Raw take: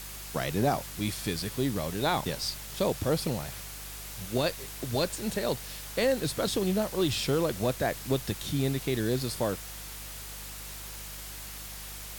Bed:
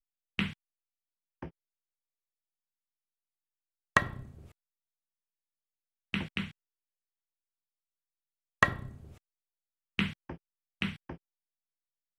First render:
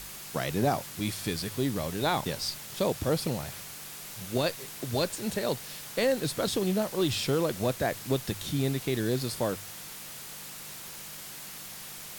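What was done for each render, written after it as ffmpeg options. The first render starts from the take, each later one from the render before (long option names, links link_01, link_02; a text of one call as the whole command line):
ffmpeg -i in.wav -af "bandreject=frequency=50:width_type=h:width=4,bandreject=frequency=100:width_type=h:width=4" out.wav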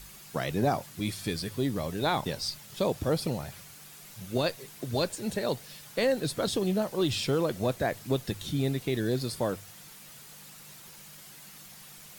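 ffmpeg -i in.wav -af "afftdn=noise_reduction=8:noise_floor=-43" out.wav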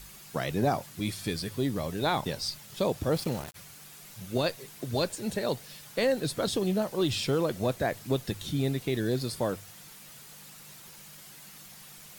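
ffmpeg -i in.wav -filter_complex "[0:a]asplit=3[link_01][link_02][link_03];[link_01]afade=type=out:start_time=3.12:duration=0.02[link_04];[link_02]aeval=exprs='val(0)*gte(abs(val(0)),0.0141)':channel_layout=same,afade=type=in:start_time=3.12:duration=0.02,afade=type=out:start_time=3.54:duration=0.02[link_05];[link_03]afade=type=in:start_time=3.54:duration=0.02[link_06];[link_04][link_05][link_06]amix=inputs=3:normalize=0" out.wav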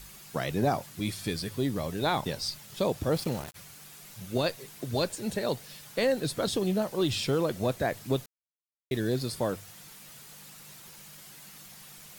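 ffmpeg -i in.wav -filter_complex "[0:a]asplit=3[link_01][link_02][link_03];[link_01]atrim=end=8.26,asetpts=PTS-STARTPTS,afade=type=out:start_time=8.256:duration=0.004:curve=hsin[link_04];[link_02]atrim=start=8.26:end=8.91,asetpts=PTS-STARTPTS,volume=0[link_05];[link_03]atrim=start=8.91,asetpts=PTS-STARTPTS,afade=type=in:duration=0.004:curve=hsin[link_06];[link_04][link_05][link_06]concat=n=3:v=0:a=1" out.wav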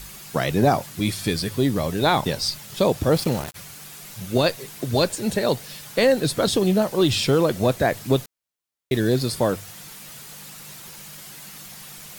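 ffmpeg -i in.wav -af "volume=8.5dB" out.wav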